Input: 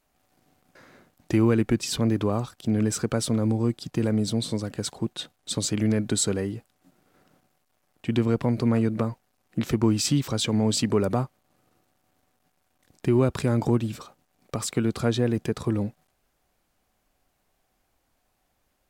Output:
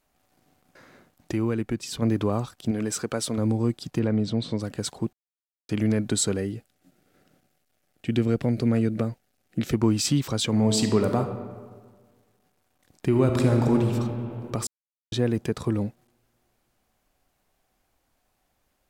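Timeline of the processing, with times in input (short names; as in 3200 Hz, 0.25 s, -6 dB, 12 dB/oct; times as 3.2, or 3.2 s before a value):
1.32–2.02 gain -5.5 dB
2.71–3.38 low shelf 180 Hz -12 dB
3.99–4.6 LPF 3700 Hz
5.13–5.69 mute
6.37–9.74 bell 1000 Hz -12 dB 0.44 oct
10.47–11.19 reverb throw, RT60 1.6 s, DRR 5.5 dB
13.07–13.92 reverb throw, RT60 2.9 s, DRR 3 dB
14.67–15.12 mute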